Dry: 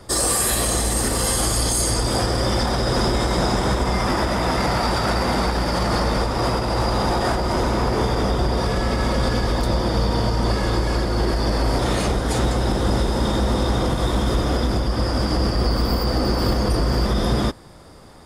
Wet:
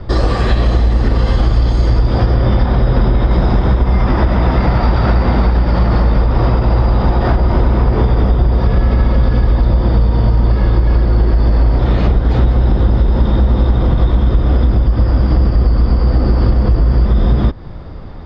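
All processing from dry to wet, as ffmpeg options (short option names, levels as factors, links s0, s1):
-filter_complex "[0:a]asettb=1/sr,asplit=3[s0][s1][s2];[s0]atrim=end=2.354[s3];[s1]atrim=start=2.35:end=3.31,asetpts=PTS-STARTPTS,afade=t=in:d=0.004:c=qsin,afade=t=out:st=0.956:d=0.004:c=qsin,lowpass=4800,asplit=2[s4][s5];[s5]adelay=24,volume=0.282[s6];[s4][s6]amix=inputs=2:normalize=0,atrim=end_sample=42336[s7];[s2]atrim=start=3.306[s8];[s3][s7]acrossfade=d=0.004:c1=hsin:c2=qsin[s9];[s9][s8]acrossfade=d=0.004:c1=qsin:c2=hsin,lowpass=f=4500:w=0.5412,lowpass=f=4500:w=1.3066,aemphasis=mode=reproduction:type=bsi,acompressor=threshold=0.178:ratio=6,volume=2.24"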